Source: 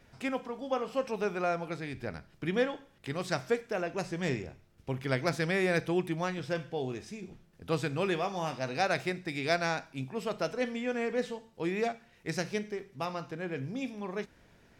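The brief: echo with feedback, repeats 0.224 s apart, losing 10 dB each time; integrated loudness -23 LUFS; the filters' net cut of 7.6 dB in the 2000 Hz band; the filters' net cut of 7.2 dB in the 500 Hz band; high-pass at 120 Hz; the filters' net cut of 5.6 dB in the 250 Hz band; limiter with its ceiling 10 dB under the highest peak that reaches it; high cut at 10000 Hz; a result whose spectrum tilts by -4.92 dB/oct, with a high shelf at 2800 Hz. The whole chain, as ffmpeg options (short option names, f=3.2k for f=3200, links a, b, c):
-af "highpass=120,lowpass=10k,equalizer=f=250:t=o:g=-5,equalizer=f=500:t=o:g=-7,equalizer=f=2k:t=o:g=-8,highshelf=f=2.8k:g=-3.5,alimiter=level_in=6dB:limit=-24dB:level=0:latency=1,volume=-6dB,aecho=1:1:224|448|672|896:0.316|0.101|0.0324|0.0104,volume=19dB"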